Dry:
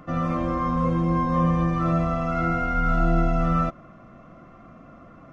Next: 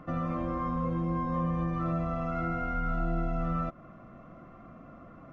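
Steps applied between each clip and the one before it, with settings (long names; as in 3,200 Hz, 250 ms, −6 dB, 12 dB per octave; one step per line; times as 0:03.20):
downward compressor 2 to 1, threshold −29 dBFS, peak gain reduction 7.5 dB
high-shelf EQ 4,100 Hz −11 dB
level −2.5 dB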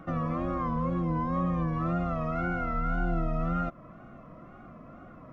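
tape wow and flutter 90 cents
level +1.5 dB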